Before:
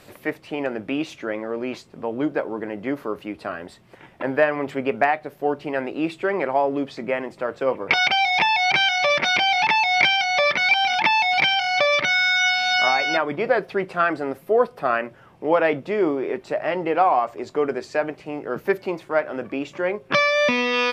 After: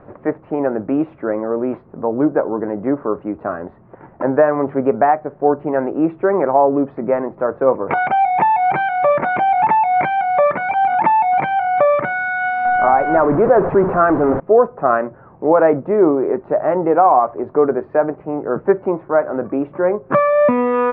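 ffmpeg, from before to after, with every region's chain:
ffmpeg -i in.wav -filter_complex "[0:a]asettb=1/sr,asplit=3[link_01][link_02][link_03];[link_01]atrim=end=12.654[link_04];[link_02]atrim=start=12.65:end=14.4,asetpts=PTS-STARTPTS,afade=type=in:duration=0.004:curve=qsin,afade=type=out:start_time=1.746:duration=0.004:curve=qsin,aeval=exprs='val(0)+0.5*0.0794*sgn(val(0))':channel_layout=same,lowpass=frequency=1700:poles=1,acrusher=bits=6:dc=4:mix=0:aa=0.000001[link_05];[link_03]atrim=start=14.396[link_06];[link_04][link_05]acrossfade=duration=0.004:curve1=hsin:curve2=qsin[link_07];[link_07][link_06]acrossfade=duration=0.004:curve1=qsin:curve2=hsin,lowpass=frequency=1300:width=0.5412,lowpass=frequency=1300:width=1.3066,alimiter=level_in=9.5dB:limit=-1dB:release=50:level=0:latency=1,volume=-1.5dB" out.wav

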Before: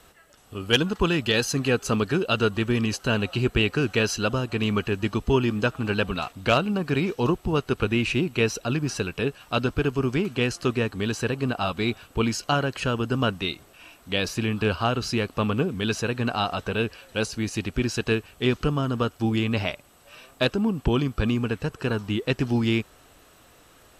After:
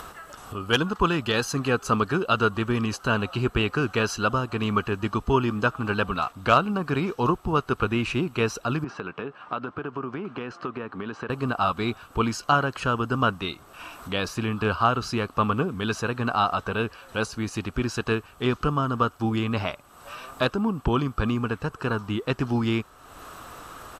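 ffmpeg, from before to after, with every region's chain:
ffmpeg -i in.wav -filter_complex "[0:a]asettb=1/sr,asplit=3[link_01][link_02][link_03];[link_01]atrim=end=8.844[link_04];[link_02]atrim=start=8.84:end=11.3,asetpts=PTS-STARTPTS,afade=type=in:duration=0.004:curve=qsin,afade=type=out:start_time=2.456:duration=0.004:curve=qsin,highpass=180,lowpass=2400,acompressor=threshold=-27dB:ratio=6:attack=3.2:release=140:knee=1:detection=peak[link_05];[link_03]atrim=start=11.296[link_06];[link_04][link_05]acrossfade=duration=0.004:curve1=hsin:curve2=qsin[link_07];[link_07][link_06]acrossfade=duration=0.004:curve1=qsin:curve2=hsin,firequalizer=gain_entry='entry(550,0);entry(1200,10);entry(1900,-2)':delay=0.05:min_phase=1,acompressor=mode=upward:threshold=-29dB:ratio=2.5,volume=-1.5dB" out.wav

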